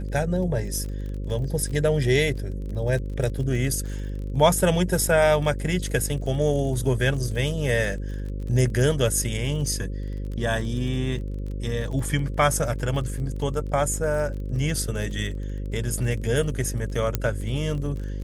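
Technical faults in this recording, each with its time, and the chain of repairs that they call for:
buzz 50 Hz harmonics 11 -30 dBFS
crackle 31 per s -33 dBFS
17.15 s: pop -8 dBFS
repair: de-click; de-hum 50 Hz, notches 11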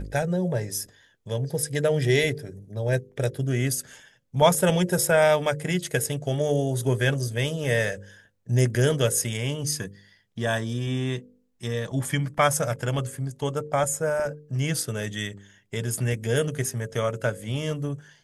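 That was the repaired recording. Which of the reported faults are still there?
nothing left

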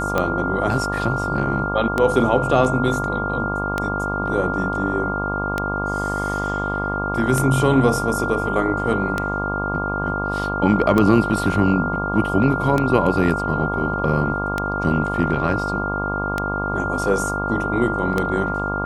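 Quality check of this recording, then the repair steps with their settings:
buzz 50 Hz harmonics 24 -26 dBFS
tick 33 1/3 rpm -7 dBFS
whine 1.4 kHz -24 dBFS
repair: de-click; de-hum 50 Hz, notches 24; band-stop 1.4 kHz, Q 30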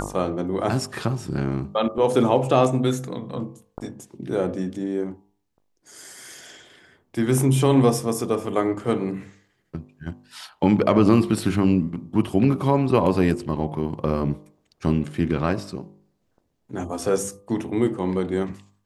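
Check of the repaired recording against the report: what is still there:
nothing left

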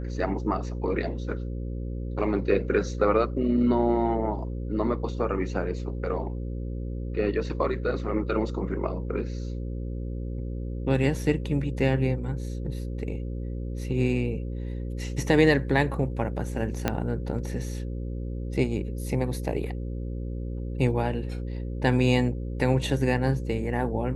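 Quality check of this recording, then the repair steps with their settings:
buzz 60 Hz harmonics 9 -32 dBFS
16.88 s: pop -9 dBFS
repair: de-click; de-hum 60 Hz, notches 9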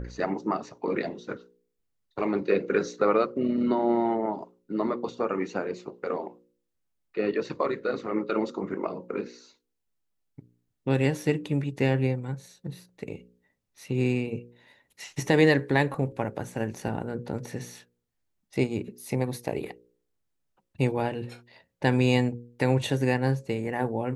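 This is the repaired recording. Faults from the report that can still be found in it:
16.88 s: pop

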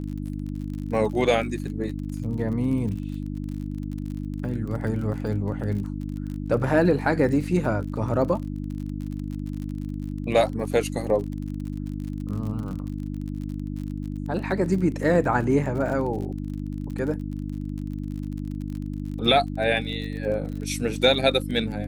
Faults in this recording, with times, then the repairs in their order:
crackle 43 per s -33 dBFS
hum 50 Hz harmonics 6 -31 dBFS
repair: de-click; de-hum 50 Hz, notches 6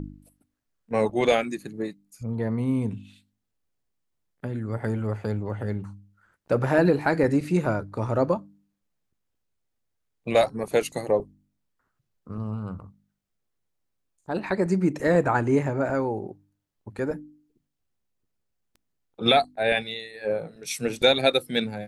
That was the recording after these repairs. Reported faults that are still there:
nothing left

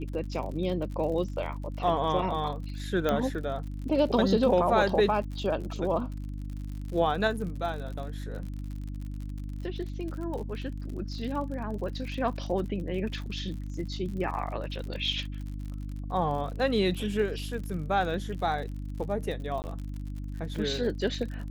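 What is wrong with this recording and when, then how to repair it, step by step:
crackle 57 per s -37 dBFS
hum 50 Hz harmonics 6 -36 dBFS
3.09 s: pop -14 dBFS
19.62–19.64 s: dropout 19 ms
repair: de-click; de-hum 50 Hz, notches 6; interpolate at 19.62 s, 19 ms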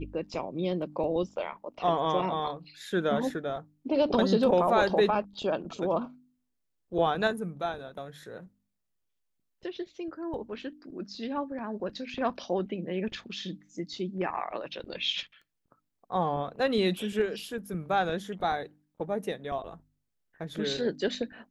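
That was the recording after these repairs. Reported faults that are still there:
nothing left

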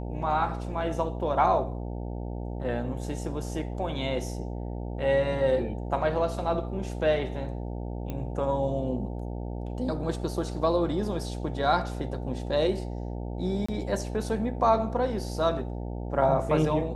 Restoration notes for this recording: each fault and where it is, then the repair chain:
buzz 60 Hz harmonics 15 -34 dBFS
8.10 s: pop -21 dBFS
13.66–13.69 s: dropout 25 ms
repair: de-click; de-hum 60 Hz, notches 15; interpolate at 13.66 s, 25 ms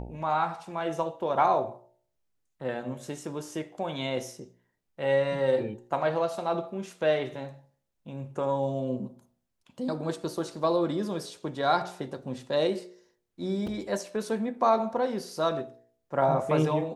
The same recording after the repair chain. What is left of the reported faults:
nothing left

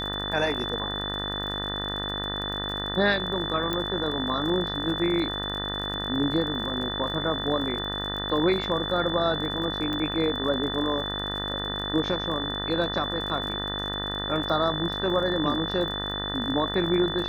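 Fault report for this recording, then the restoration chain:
buzz 50 Hz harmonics 38 -34 dBFS
crackle 40 per s -35 dBFS
whine 3.5 kHz -31 dBFS
3.73 s: pop -14 dBFS
9.93 s: pop -19 dBFS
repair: de-click; de-hum 50 Hz, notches 38; band-stop 3.5 kHz, Q 30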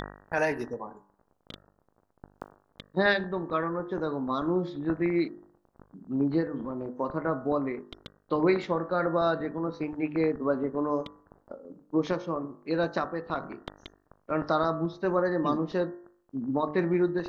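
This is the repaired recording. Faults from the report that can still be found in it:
nothing left

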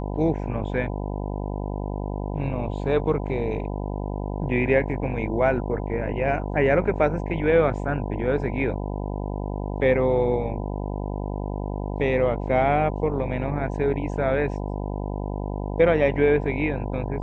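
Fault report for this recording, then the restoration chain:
buzz 50 Hz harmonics 20 -29 dBFS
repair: de-hum 50 Hz, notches 20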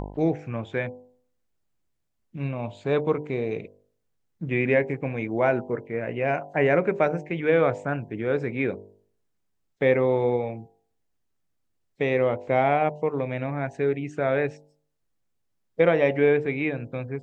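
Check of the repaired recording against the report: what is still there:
nothing left

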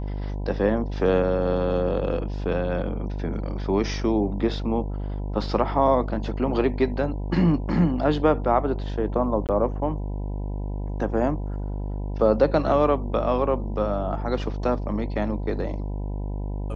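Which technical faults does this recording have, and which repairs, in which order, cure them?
buzz 50 Hz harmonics 20 -29 dBFS
9.47–9.49 s: dropout 18 ms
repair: de-hum 50 Hz, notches 20; interpolate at 9.47 s, 18 ms

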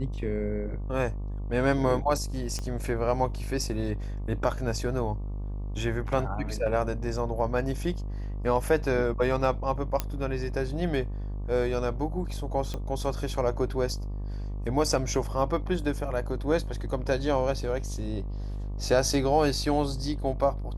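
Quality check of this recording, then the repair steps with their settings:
buzz 50 Hz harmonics 24 -33 dBFS
2.59 s: pop -21 dBFS
10.00 s: pop -12 dBFS
12.74 s: pop -20 dBFS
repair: de-click; de-hum 50 Hz, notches 24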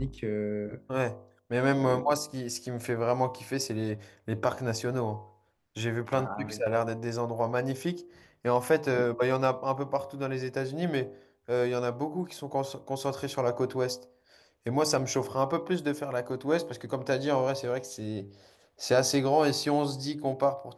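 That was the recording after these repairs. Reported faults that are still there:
2.59 s: pop
10.00 s: pop

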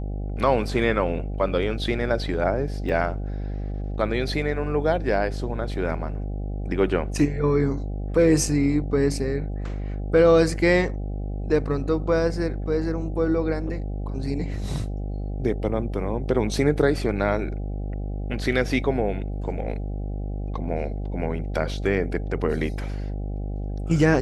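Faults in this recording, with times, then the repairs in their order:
buzz 50 Hz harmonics 16 -29 dBFS
2.89 s: dropout 4.7 ms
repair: de-hum 50 Hz, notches 16; interpolate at 2.89 s, 4.7 ms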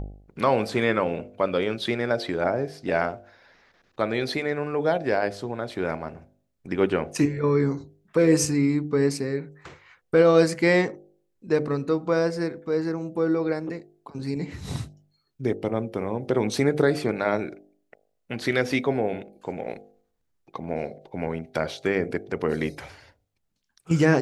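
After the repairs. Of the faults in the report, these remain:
nothing left

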